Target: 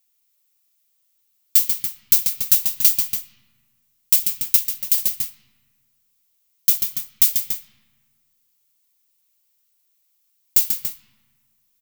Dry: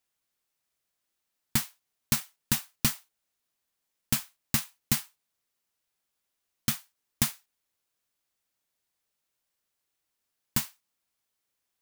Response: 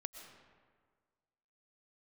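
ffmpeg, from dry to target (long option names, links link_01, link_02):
-filter_complex "[0:a]aecho=1:1:139.9|285.7:0.398|0.251,acrossover=split=2300[link_01][link_02];[link_01]acompressor=threshold=-37dB:ratio=6[link_03];[link_03][link_02]amix=inputs=2:normalize=0,equalizer=frequency=630:width_type=o:width=0.67:gain=-3,equalizer=frequency=1600:width_type=o:width=0.67:gain=-7,equalizer=frequency=10000:width_type=o:width=0.67:gain=-5,asettb=1/sr,asplit=3[link_04][link_05][link_06];[link_04]atrim=end=4.564[link_07];[link_05]atrim=start=4.56:end=4.98,asetpts=PTS-STARTPTS,afade=type=in:duration=0.004:curve=qsin,afade=type=out:start_time=0.416:duration=0.004:curve=qsin,tremolo=f=240:d=0.889[link_08];[link_06]atrim=start=4.976[link_09];[link_07][link_08]acrossfade=duration=0.004:curve1=hsin:curve2=qsin[link_10];[link_10][link_09]acrossfade=duration=0.004:curve1=qsin:curve2=hsin,asplit=2[link_11][link_12];[link_12]equalizer=frequency=1900:width=0.56:gain=9.5[link_13];[1:a]atrim=start_sample=2205,lowpass=4400,lowshelf=frequency=190:gain=9.5[link_14];[link_13][link_14]afir=irnorm=-1:irlink=0,volume=-10.5dB[link_15];[link_11][link_15]amix=inputs=2:normalize=0,aeval=exprs='0.316*sin(PI/2*2*val(0)/0.316)':channel_layout=same,crystalizer=i=6:c=0,volume=-13.5dB"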